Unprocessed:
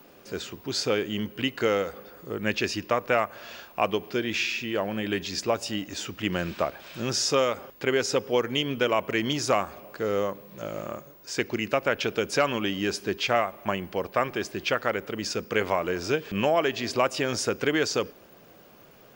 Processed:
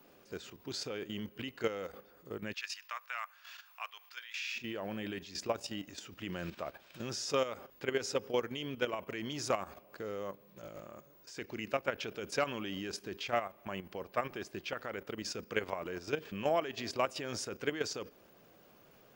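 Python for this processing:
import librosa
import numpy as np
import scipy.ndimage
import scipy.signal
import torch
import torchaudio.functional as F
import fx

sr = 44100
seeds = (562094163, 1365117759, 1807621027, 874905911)

y = fx.highpass(x, sr, hz=1100.0, slope=24, at=(2.52, 4.55), fade=0.02)
y = fx.level_steps(y, sr, step_db=11)
y = F.gain(torch.from_numpy(y), -6.5).numpy()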